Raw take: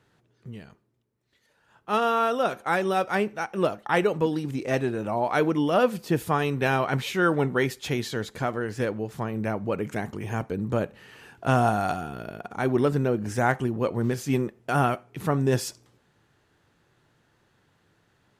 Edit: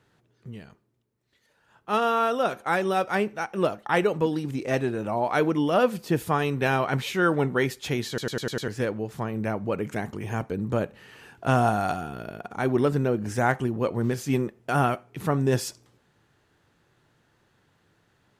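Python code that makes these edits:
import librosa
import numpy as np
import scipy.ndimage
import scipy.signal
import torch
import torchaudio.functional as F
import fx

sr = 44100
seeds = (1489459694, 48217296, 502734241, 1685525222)

y = fx.edit(x, sr, fx.stutter_over(start_s=8.08, slice_s=0.1, count=6), tone=tone)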